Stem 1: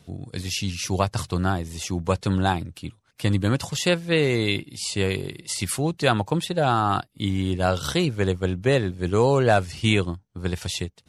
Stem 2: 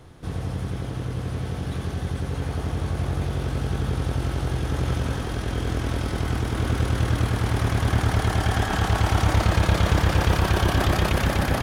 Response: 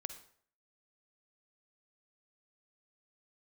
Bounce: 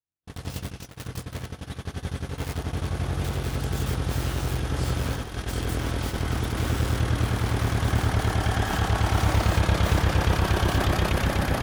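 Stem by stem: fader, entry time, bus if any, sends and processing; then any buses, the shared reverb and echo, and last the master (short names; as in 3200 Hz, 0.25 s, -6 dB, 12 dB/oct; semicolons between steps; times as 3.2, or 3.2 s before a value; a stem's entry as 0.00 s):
-13.5 dB, 0.00 s, muted 1.46–2.38, no send, wrapped overs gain 22 dB
-3.5 dB, 0.00 s, send -11.5 dB, dry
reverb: on, RT60 0.55 s, pre-delay 43 ms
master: gate -28 dBFS, range -57 dB; mismatched tape noise reduction encoder only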